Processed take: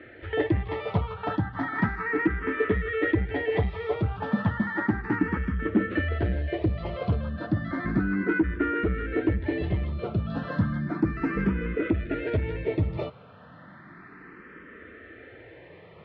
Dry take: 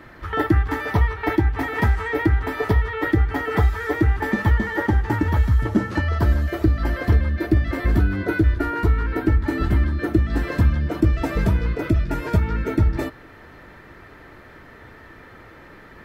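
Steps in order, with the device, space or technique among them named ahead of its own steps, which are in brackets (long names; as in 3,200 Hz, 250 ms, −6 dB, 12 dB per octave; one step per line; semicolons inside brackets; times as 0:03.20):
barber-pole phaser into a guitar amplifier (frequency shifter mixed with the dry sound +0.33 Hz; soft clipping −14 dBFS, distortion −17 dB; loudspeaker in its box 100–3,400 Hz, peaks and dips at 180 Hz +5 dB, 470 Hz +3 dB, 880 Hz −6 dB)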